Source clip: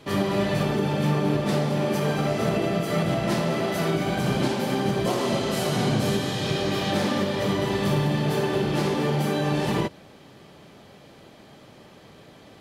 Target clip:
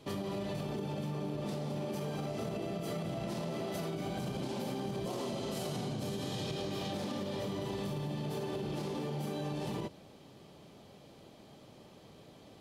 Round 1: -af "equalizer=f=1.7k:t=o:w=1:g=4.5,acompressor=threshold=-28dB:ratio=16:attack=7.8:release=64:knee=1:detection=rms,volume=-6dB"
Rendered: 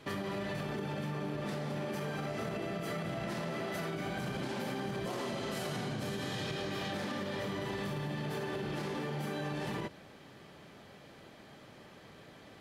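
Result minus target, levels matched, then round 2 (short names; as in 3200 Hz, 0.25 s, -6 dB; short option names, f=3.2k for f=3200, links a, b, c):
2000 Hz band +8.0 dB
-af "equalizer=f=1.7k:t=o:w=1:g=-7.5,acompressor=threshold=-28dB:ratio=16:attack=7.8:release=64:knee=1:detection=rms,volume=-6dB"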